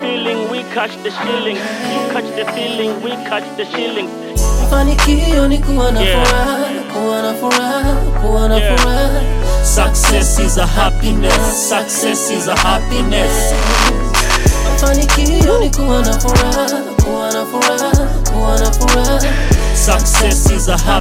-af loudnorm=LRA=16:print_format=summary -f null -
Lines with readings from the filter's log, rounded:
Input Integrated:    -13.9 LUFS
Input True Peak:      -1.4 dBTP
Input LRA:             4.3 LU
Input Threshold:     -23.9 LUFS